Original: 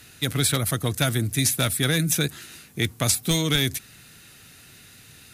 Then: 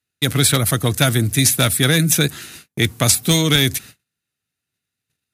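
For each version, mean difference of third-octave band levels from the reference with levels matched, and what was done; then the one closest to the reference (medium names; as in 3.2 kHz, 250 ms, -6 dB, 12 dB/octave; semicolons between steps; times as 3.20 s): 5.5 dB: high-pass 49 Hz; gate -43 dBFS, range -40 dB; trim +7 dB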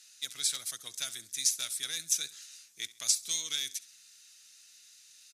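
11.0 dB: band-pass filter 6 kHz, Q 2.2; on a send: feedback delay 67 ms, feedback 37%, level -19.5 dB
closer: first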